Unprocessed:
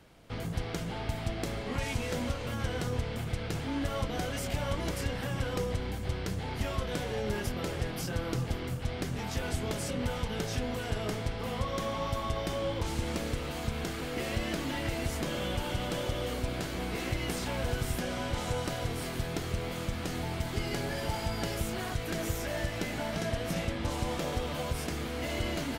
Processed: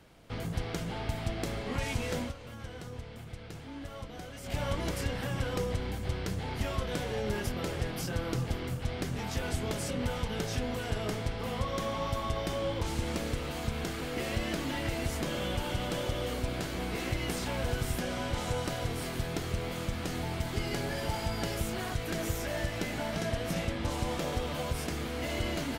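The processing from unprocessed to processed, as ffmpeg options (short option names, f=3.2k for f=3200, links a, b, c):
-filter_complex "[0:a]asplit=3[a][b][c];[a]atrim=end=2.33,asetpts=PTS-STARTPTS,afade=t=out:st=2.14:d=0.19:c=qsin:silence=0.316228[d];[b]atrim=start=2.33:end=4.43,asetpts=PTS-STARTPTS,volume=-10dB[e];[c]atrim=start=4.43,asetpts=PTS-STARTPTS,afade=t=in:d=0.19:c=qsin:silence=0.316228[f];[d][e][f]concat=n=3:v=0:a=1"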